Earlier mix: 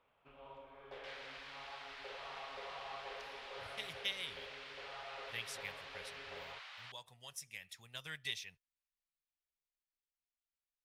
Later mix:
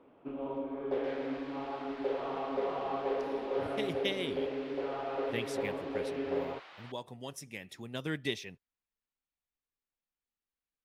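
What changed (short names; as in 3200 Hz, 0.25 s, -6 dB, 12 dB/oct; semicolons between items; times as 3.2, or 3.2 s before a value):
second sound -6.0 dB; master: remove passive tone stack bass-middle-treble 10-0-10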